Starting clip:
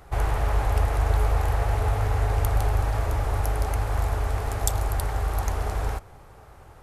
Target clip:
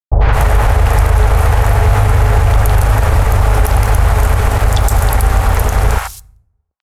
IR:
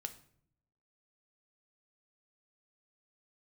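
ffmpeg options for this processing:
-filter_complex "[0:a]equalizer=frequency=340:width_type=o:width=0.29:gain=-13.5,aeval=exprs='sgn(val(0))*max(abs(val(0))-0.0141,0)':channel_layout=same,acrossover=split=750|4400[link_01][link_02][link_03];[link_02]adelay=90[link_04];[link_03]adelay=210[link_05];[link_01][link_04][link_05]amix=inputs=3:normalize=0,asplit=2[link_06][link_07];[1:a]atrim=start_sample=2205[link_08];[link_07][link_08]afir=irnorm=-1:irlink=0,volume=-9.5dB[link_09];[link_06][link_09]amix=inputs=2:normalize=0,alimiter=level_in=19dB:limit=-1dB:release=50:level=0:latency=1,volume=-1dB"

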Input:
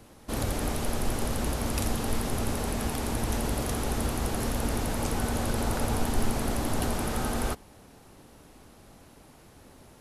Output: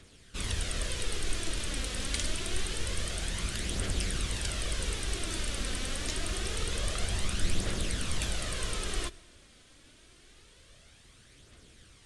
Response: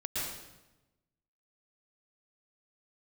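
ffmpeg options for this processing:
-filter_complex "[0:a]equalizer=frequency=250:width_type=o:width=1:gain=-7,equalizer=frequency=1000:width_type=o:width=1:gain=-10,equalizer=frequency=2000:width_type=o:width=1:gain=5,equalizer=frequency=4000:width_type=o:width=1:gain=8,equalizer=frequency=8000:width_type=o:width=1:gain=4,asetrate=36603,aresample=44100,aphaser=in_gain=1:out_gain=1:delay=4:decay=0.39:speed=0.26:type=triangular,asplit=2[link_01][link_02];[1:a]atrim=start_sample=2205,asetrate=48510,aresample=44100[link_03];[link_02][link_03]afir=irnorm=-1:irlink=0,volume=-25dB[link_04];[link_01][link_04]amix=inputs=2:normalize=0,volume=-5.5dB"

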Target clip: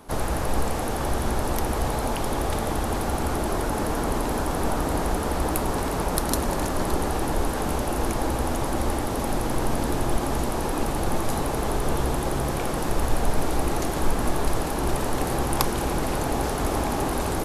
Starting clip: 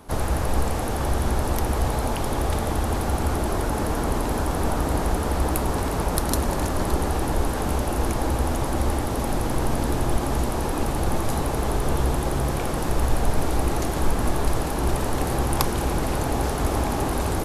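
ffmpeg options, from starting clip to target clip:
ffmpeg -i in.wav -af "equalizer=frequency=75:width_type=o:width=1.5:gain=-5.5" out.wav

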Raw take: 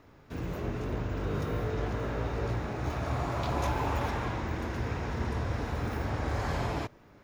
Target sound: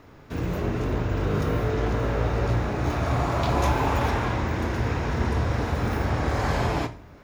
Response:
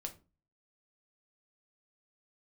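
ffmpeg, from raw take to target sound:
-filter_complex "[0:a]asplit=2[link_01][link_02];[1:a]atrim=start_sample=2205,asetrate=22932,aresample=44100,adelay=34[link_03];[link_02][link_03]afir=irnorm=-1:irlink=0,volume=-12.5dB[link_04];[link_01][link_04]amix=inputs=2:normalize=0,volume=7dB"

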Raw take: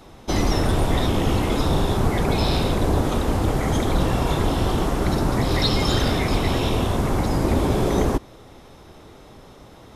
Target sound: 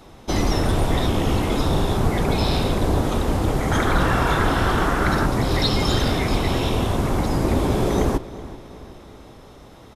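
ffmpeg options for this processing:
ffmpeg -i in.wav -filter_complex "[0:a]asettb=1/sr,asplit=3[link_01][link_02][link_03];[link_01]atrim=end=3.714[link_04];[link_02]atrim=start=3.71:end=5.26,asetpts=PTS-STARTPTS,afade=type=in:duration=0.004:curve=qsin,afade=type=out:start_time=1.546:duration=0.004:curve=qsin,equalizer=frequency=1500:width=1.5:gain=13[link_05];[link_03]atrim=start=5.256[link_06];[link_04][link_05]acrossfade=duration=0.004:curve1=hsin:curve2=qsin[link_07];[link_07][link_06]acrossfade=duration=0.004:curve1=qsin:curve2=hsin,asplit=2[link_08][link_09];[link_09]adelay=376,lowpass=frequency=4700:poles=1,volume=-17dB,asplit=2[link_10][link_11];[link_11]adelay=376,lowpass=frequency=4700:poles=1,volume=0.52,asplit=2[link_12][link_13];[link_13]adelay=376,lowpass=frequency=4700:poles=1,volume=0.52,asplit=2[link_14][link_15];[link_15]adelay=376,lowpass=frequency=4700:poles=1,volume=0.52,asplit=2[link_16][link_17];[link_17]adelay=376,lowpass=frequency=4700:poles=1,volume=0.52[link_18];[link_10][link_12][link_14][link_16][link_18]amix=inputs=5:normalize=0[link_19];[link_08][link_19]amix=inputs=2:normalize=0" out.wav

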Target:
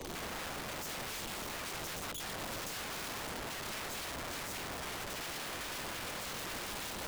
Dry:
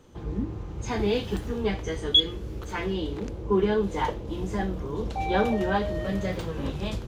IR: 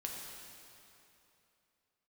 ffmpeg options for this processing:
-filter_complex "[0:a]asuperstop=centerf=1500:order=8:qfactor=2.8,areverse,acompressor=threshold=-31dB:ratio=6,areverse,asoftclip=type=tanh:threshold=-37dB,acrossover=split=160|330|710[link_01][link_02][link_03][link_04];[link_01]acompressor=threshold=-51dB:ratio=4[link_05];[link_02]acompressor=threshold=-53dB:ratio=4[link_06];[link_03]acompressor=threshold=-56dB:ratio=4[link_07];[link_04]acompressor=threshold=-56dB:ratio=4[link_08];[link_05][link_06][link_07][link_08]amix=inputs=4:normalize=0,flanger=delay=2:depth=3.8:regen=-11:speed=1.7:shape=triangular,aeval=exprs='(mod(398*val(0)+1,2)-1)/398':channel_layout=same,volume=15.5dB"

